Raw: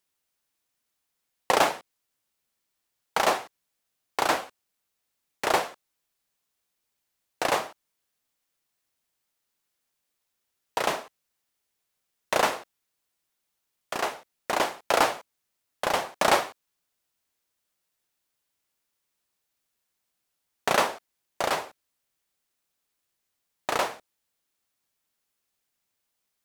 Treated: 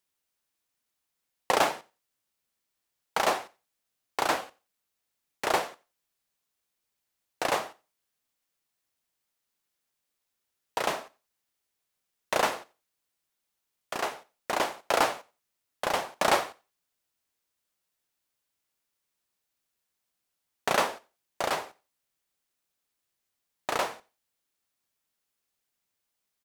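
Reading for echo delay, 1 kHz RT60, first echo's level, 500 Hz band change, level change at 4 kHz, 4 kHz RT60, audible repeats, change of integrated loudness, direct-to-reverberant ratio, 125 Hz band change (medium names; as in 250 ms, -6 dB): 90 ms, no reverb, -23.0 dB, -2.5 dB, -2.5 dB, no reverb, 1, -2.5 dB, no reverb, -2.5 dB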